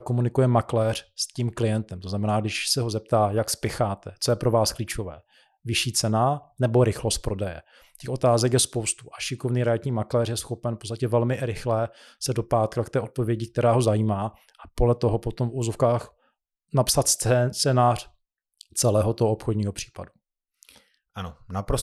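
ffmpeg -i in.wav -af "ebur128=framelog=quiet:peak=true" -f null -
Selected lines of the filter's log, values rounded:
Integrated loudness:
  I:         -24.5 LUFS
  Threshold: -35.1 LUFS
Loudness range:
  LRA:         3.1 LU
  Threshold: -45.0 LUFS
  LRA low:   -26.6 LUFS
  LRA high:  -23.5 LUFS
True peak:
  Peak:       -9.5 dBFS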